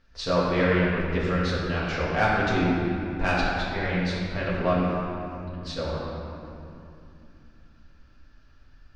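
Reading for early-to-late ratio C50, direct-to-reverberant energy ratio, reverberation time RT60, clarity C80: −2.0 dB, −8.0 dB, 2.7 s, −0.5 dB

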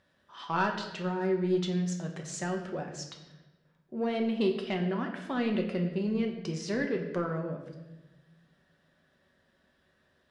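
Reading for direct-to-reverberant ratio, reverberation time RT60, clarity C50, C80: 1.5 dB, 1.1 s, 7.5 dB, 9.0 dB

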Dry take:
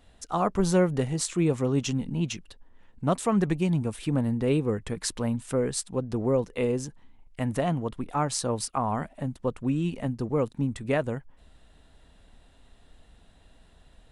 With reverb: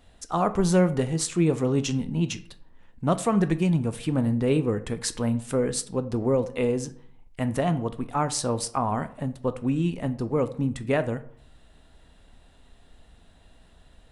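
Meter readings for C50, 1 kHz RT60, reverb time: 16.0 dB, 0.55 s, 0.55 s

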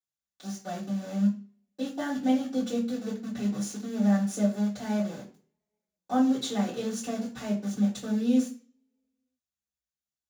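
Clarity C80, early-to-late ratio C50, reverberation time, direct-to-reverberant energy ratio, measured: 14.5 dB, 9.5 dB, 0.45 s, −11.0 dB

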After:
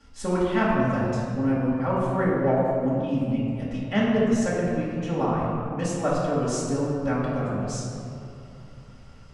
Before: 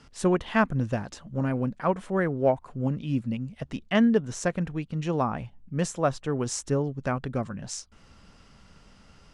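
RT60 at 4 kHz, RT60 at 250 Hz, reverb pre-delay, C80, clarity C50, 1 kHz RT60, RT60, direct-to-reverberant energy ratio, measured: 1.3 s, 3.2 s, 3 ms, 0.0 dB, −1.5 dB, 2.6 s, 2.9 s, −8.5 dB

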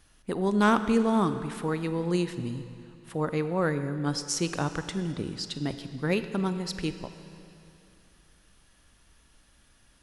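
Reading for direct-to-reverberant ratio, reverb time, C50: 10.5 dB, 2.8 s, 11.0 dB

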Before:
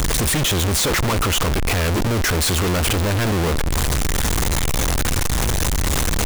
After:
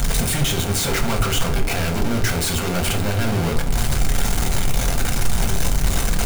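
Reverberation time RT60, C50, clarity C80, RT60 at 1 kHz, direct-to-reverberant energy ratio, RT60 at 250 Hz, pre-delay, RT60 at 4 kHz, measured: 0.55 s, 11.5 dB, 16.0 dB, 0.45 s, 2.0 dB, 0.75 s, 4 ms, 0.30 s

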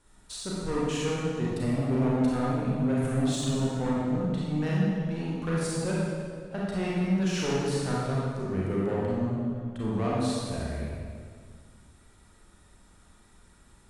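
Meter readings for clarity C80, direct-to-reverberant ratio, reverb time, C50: −0.5 dB, −6.5 dB, 1.9 s, −3.5 dB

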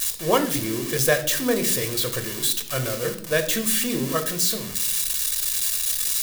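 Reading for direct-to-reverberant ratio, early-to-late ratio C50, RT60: 6.0 dB, 12.0 dB, 0.65 s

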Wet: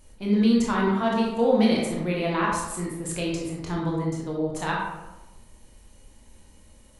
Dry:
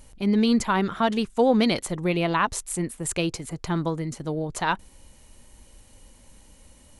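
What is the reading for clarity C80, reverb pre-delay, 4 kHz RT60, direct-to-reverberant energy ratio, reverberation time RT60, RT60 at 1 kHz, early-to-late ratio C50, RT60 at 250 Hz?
4.0 dB, 19 ms, 0.60 s, −3.5 dB, 1.0 s, 1.0 s, 1.0 dB, 1.2 s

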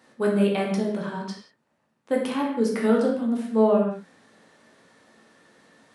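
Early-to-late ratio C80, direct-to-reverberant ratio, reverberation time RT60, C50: 6.0 dB, −2.0 dB, non-exponential decay, 3.5 dB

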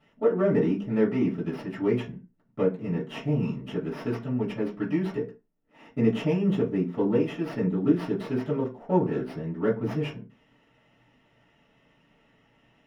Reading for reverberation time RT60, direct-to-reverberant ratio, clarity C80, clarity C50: non-exponential decay, −9.0 dB, 18.0 dB, 12.0 dB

